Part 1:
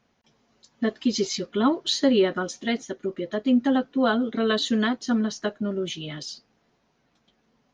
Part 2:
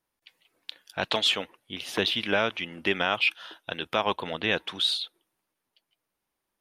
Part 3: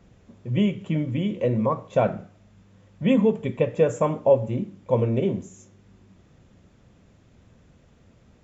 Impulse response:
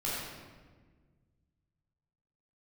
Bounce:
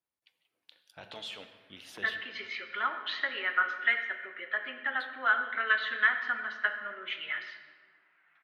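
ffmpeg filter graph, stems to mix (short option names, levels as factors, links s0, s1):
-filter_complex "[0:a]lowpass=f=2400:w=0.5412,lowpass=f=2400:w=1.3066,acompressor=threshold=0.0708:ratio=3,highpass=f=1700:t=q:w=2.6,adelay=1200,volume=1.19,asplit=2[s0][s1];[s1]volume=0.299[s2];[1:a]volume=0.224,asplit=3[s3][s4][s5];[s3]atrim=end=2.16,asetpts=PTS-STARTPTS,afade=t=out:st=2.156:d=0.004:c=hsin[s6];[s4]atrim=start=2.16:end=5,asetpts=PTS-STARTPTS,volume=0[s7];[s5]atrim=start=5,asetpts=PTS-STARTPTS,afade=t=in:d=0.004:c=hsin[s8];[s6][s7][s8]concat=n=3:v=0:a=1,asplit=2[s9][s10];[s10]volume=0.126[s11];[s9]alimiter=level_in=3.35:limit=0.0631:level=0:latency=1:release=20,volume=0.299,volume=1[s12];[3:a]atrim=start_sample=2205[s13];[s2][s11]amix=inputs=2:normalize=0[s14];[s14][s13]afir=irnorm=-1:irlink=0[s15];[s0][s12][s15]amix=inputs=3:normalize=0,highpass=56"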